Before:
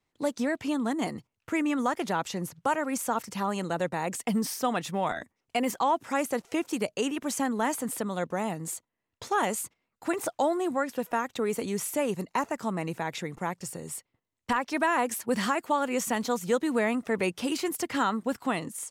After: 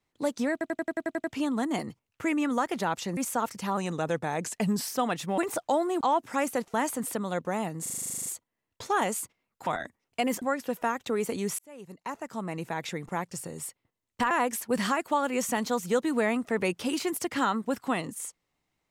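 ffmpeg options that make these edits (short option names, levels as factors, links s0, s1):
-filter_complex "[0:a]asplit=30[s0][s1][s2][s3][s4][s5][s6][s7][s8][s9][s10][s11][s12][s13][s14][s15][s16][s17][s18][s19][s20][s21][s22][s23][s24][s25][s26][s27][s28][s29];[s0]atrim=end=0.612[s30];[s1]atrim=start=0.518:end=0.612[s31];[s2]atrim=start=0.518:end=0.612[s32];[s3]atrim=start=0.518:end=0.612[s33];[s4]atrim=start=0.518:end=0.612[s34];[s5]atrim=start=0.518:end=0.612[s35];[s6]atrim=start=0.518:end=0.612[s36];[s7]atrim=start=0.518:end=0.612[s37];[s8]atrim=start=0.518:end=2.452[s38];[s9]atrim=start=2.898:end=3.504[s39];[s10]atrim=start=3.5:end=4.52,asetpts=PTS-STARTPTS,asetrate=41013,aresample=44100[s40];[s11]atrim=start=4.516:end=5.032[s41];[s12]atrim=start=10.078:end=10.712[s42];[s13]atrim=start=5.778:end=6.512[s43];[s14]atrim=start=7.588:end=8.712[s44];[s15]atrim=start=8.668:end=8.712[s45];[s16]atrim=start=8.668:end=8.712[s46];[s17]atrim=start=8.668:end=8.712[s47];[s18]atrim=start=8.668:end=8.712[s48];[s19]atrim=start=8.668:end=8.712[s49];[s20]atrim=start=8.668:end=8.712[s50];[s21]atrim=start=8.668:end=8.712[s51];[s22]atrim=start=8.668:end=8.712[s52];[s23]atrim=start=8.668:end=8.712[s53];[s24]atrim=start=8.668:end=8.712[s54];[s25]atrim=start=8.668:end=10.082[s55];[s26]atrim=start=5.028:end=5.782[s56];[s27]atrim=start=10.708:end=11.88,asetpts=PTS-STARTPTS,afade=t=out:st=1.168:d=0.004:c=hsin[s57];[s28]atrim=start=11.88:end=14.602,asetpts=PTS-STARTPTS,afade=t=in:d=1.28[s58];[s29]atrim=start=14.888[s59];[s30][s31]acrossfade=d=0.004:c1=hsin:c2=hsin[s60];[s60][s32]acrossfade=d=0.004:c1=hsin:c2=hsin[s61];[s61][s33]acrossfade=d=0.004:c1=hsin:c2=hsin[s62];[s62][s34]acrossfade=d=0.004:c1=hsin:c2=hsin[s63];[s63][s35]acrossfade=d=0.004:c1=hsin:c2=hsin[s64];[s64][s36]acrossfade=d=0.004:c1=hsin:c2=hsin[s65];[s65][s37]acrossfade=d=0.004:c1=hsin:c2=hsin[s66];[s66][s38]acrossfade=d=0.004:c1=hsin:c2=hsin[s67];[s67][s39]acrossfade=d=0.004:c1=hsin:c2=hsin[s68];[s68][s40]acrossfade=d=0.004:c1=hsin:c2=hsin[s69];[s69][s41]acrossfade=d=0.004:c1=hsin:c2=hsin[s70];[s70][s42]acrossfade=d=0.004:c1=hsin:c2=hsin[s71];[s71][s43]acrossfade=d=0.004:c1=hsin:c2=hsin[s72];[s72][s44]acrossfade=d=0.004:c1=hsin:c2=hsin[s73];[s73][s45]acrossfade=d=0.004:c1=hsin:c2=hsin[s74];[s74][s46]acrossfade=d=0.004:c1=hsin:c2=hsin[s75];[s75][s47]acrossfade=d=0.004:c1=hsin:c2=hsin[s76];[s76][s48]acrossfade=d=0.004:c1=hsin:c2=hsin[s77];[s77][s49]acrossfade=d=0.004:c1=hsin:c2=hsin[s78];[s78][s50]acrossfade=d=0.004:c1=hsin:c2=hsin[s79];[s79][s51]acrossfade=d=0.004:c1=hsin:c2=hsin[s80];[s80][s52]acrossfade=d=0.004:c1=hsin:c2=hsin[s81];[s81][s53]acrossfade=d=0.004:c1=hsin:c2=hsin[s82];[s82][s54]acrossfade=d=0.004:c1=hsin:c2=hsin[s83];[s83][s55]acrossfade=d=0.004:c1=hsin:c2=hsin[s84];[s84][s56]acrossfade=d=0.004:c1=hsin:c2=hsin[s85];[s57][s58]concat=n=2:v=0:a=1[s86];[s85][s86]acrossfade=d=0.004:c1=hsin:c2=hsin[s87];[s87][s59]acrossfade=d=0.004:c1=hsin:c2=hsin"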